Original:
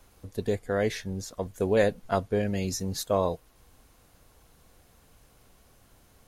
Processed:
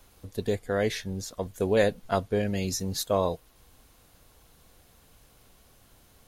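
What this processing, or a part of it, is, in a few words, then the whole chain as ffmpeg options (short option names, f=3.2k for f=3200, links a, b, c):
presence and air boost: -af "equalizer=f=3.6k:t=o:w=0.94:g=3.5,highshelf=f=12k:g=6"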